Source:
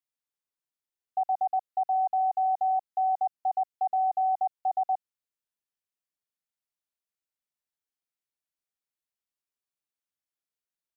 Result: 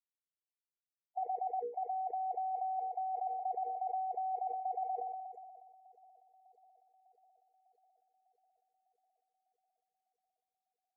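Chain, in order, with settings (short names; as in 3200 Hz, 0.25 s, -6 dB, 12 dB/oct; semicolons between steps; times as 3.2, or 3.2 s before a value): per-bin expansion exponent 1.5; bell 520 Hz +13 dB 0.69 oct; notches 60/120/180/240/300/360/420/480 Hz; negative-ratio compressor -34 dBFS, ratio -1; loudest bins only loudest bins 16; vowel filter a; darkening echo 0.601 s, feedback 85%, low-pass 890 Hz, level -18 dB; sustainer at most 31 dB/s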